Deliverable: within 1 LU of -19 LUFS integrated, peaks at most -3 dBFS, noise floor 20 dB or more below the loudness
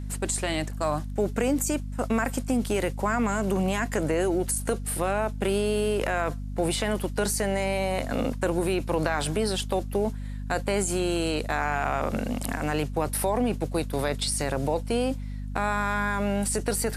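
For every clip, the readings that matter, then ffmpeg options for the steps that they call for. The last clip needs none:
hum 50 Hz; harmonics up to 250 Hz; hum level -31 dBFS; loudness -27.0 LUFS; peak -8.5 dBFS; loudness target -19.0 LUFS
-> -af "bandreject=f=50:t=h:w=6,bandreject=f=100:t=h:w=6,bandreject=f=150:t=h:w=6,bandreject=f=200:t=h:w=6,bandreject=f=250:t=h:w=6"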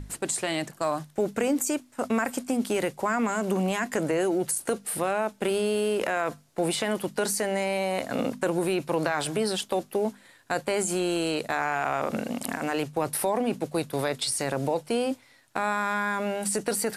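hum none; loudness -28.0 LUFS; peak -8.5 dBFS; loudness target -19.0 LUFS
-> -af "volume=9dB,alimiter=limit=-3dB:level=0:latency=1"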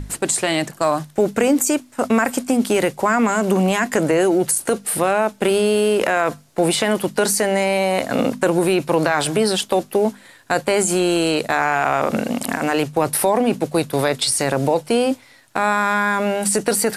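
loudness -19.0 LUFS; peak -3.0 dBFS; noise floor -48 dBFS

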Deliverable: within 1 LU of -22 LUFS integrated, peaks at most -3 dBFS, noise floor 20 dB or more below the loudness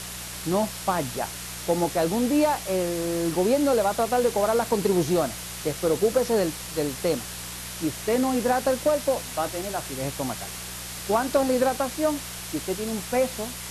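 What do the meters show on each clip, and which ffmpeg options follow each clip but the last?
hum 60 Hz; harmonics up to 180 Hz; hum level -41 dBFS; noise floor -36 dBFS; noise floor target -46 dBFS; loudness -25.5 LUFS; peak -11.0 dBFS; loudness target -22.0 LUFS
-> -af "bandreject=f=60:t=h:w=4,bandreject=f=120:t=h:w=4,bandreject=f=180:t=h:w=4"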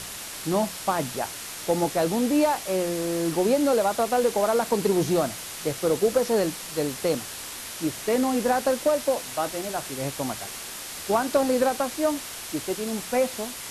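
hum none; noise floor -37 dBFS; noise floor target -46 dBFS
-> -af "afftdn=nr=9:nf=-37"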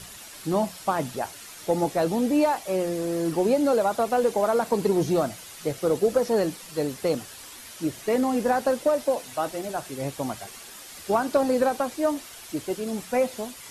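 noise floor -43 dBFS; noise floor target -46 dBFS
-> -af "afftdn=nr=6:nf=-43"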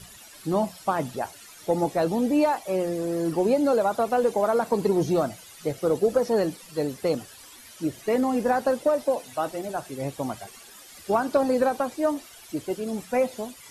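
noise floor -48 dBFS; loudness -25.5 LUFS; peak -11.5 dBFS; loudness target -22.0 LUFS
-> -af "volume=3.5dB"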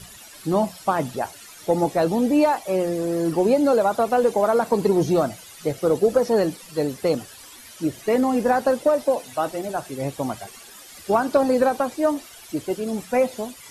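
loudness -22.0 LUFS; peak -8.0 dBFS; noise floor -44 dBFS

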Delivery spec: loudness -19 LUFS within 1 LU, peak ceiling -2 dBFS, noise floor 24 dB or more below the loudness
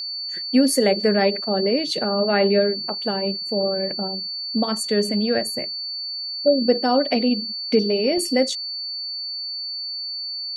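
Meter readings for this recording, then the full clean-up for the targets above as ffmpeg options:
steady tone 4500 Hz; tone level -27 dBFS; loudness -21.5 LUFS; peak -5.5 dBFS; loudness target -19.0 LUFS
-> -af "bandreject=f=4.5k:w=30"
-af "volume=2.5dB"

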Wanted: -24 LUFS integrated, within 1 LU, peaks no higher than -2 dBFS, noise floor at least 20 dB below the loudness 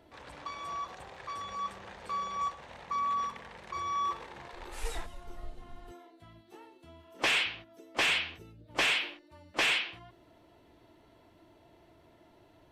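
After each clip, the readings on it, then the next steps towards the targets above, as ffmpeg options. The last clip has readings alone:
loudness -32.5 LUFS; peak -21.0 dBFS; loudness target -24.0 LUFS
-> -af "volume=8.5dB"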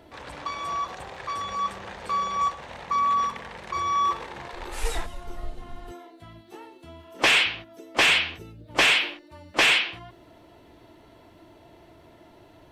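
loudness -24.0 LUFS; peak -12.5 dBFS; noise floor -53 dBFS

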